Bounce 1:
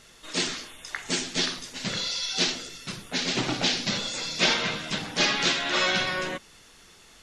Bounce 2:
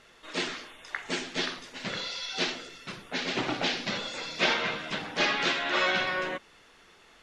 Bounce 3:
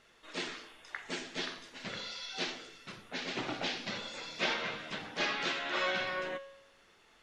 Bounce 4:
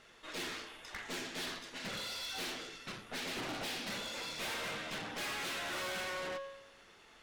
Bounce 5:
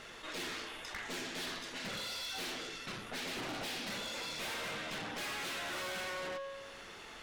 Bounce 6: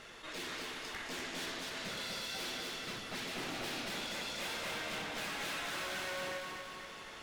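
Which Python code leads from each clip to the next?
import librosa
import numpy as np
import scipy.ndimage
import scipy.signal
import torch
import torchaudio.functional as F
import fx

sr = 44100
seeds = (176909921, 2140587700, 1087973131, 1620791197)

y1 = fx.bass_treble(x, sr, bass_db=-8, treble_db=-13)
y2 = fx.comb_fb(y1, sr, f0_hz=110.0, decay_s=0.84, harmonics='all', damping=0.0, mix_pct=60)
y3 = fx.tube_stage(y2, sr, drive_db=45.0, bias=0.65)
y3 = F.gain(torch.from_numpy(y3), 7.0).numpy()
y4 = fx.env_flatten(y3, sr, amount_pct=50)
y4 = F.gain(torch.from_numpy(y4), -1.0).numpy()
y5 = fx.echo_feedback(y4, sr, ms=241, feedback_pct=57, wet_db=-3)
y5 = F.gain(torch.from_numpy(y5), -2.0).numpy()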